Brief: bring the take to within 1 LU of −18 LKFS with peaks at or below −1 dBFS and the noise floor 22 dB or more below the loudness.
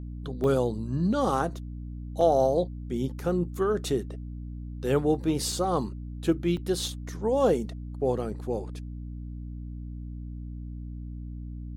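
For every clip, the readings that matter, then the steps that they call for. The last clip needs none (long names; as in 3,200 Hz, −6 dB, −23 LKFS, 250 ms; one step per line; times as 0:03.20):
number of dropouts 6; longest dropout 1.8 ms; mains hum 60 Hz; hum harmonics up to 300 Hz; level of the hum −35 dBFS; integrated loudness −28.0 LKFS; sample peak −11.0 dBFS; target loudness −18.0 LKFS
→ repair the gap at 0:00.44/0:02.21/0:03.20/0:04.87/0:05.52/0:06.57, 1.8 ms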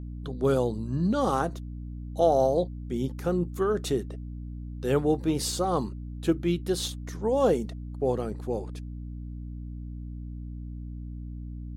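number of dropouts 0; mains hum 60 Hz; hum harmonics up to 300 Hz; level of the hum −35 dBFS
→ hum removal 60 Hz, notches 5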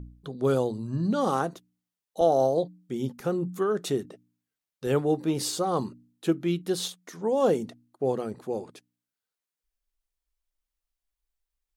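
mains hum none found; integrated loudness −28.0 LKFS; sample peak −11.5 dBFS; target loudness −18.0 LKFS
→ level +10 dB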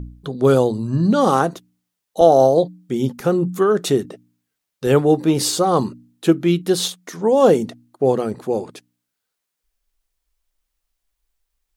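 integrated loudness −18.0 LKFS; sample peak −1.5 dBFS; background noise floor −80 dBFS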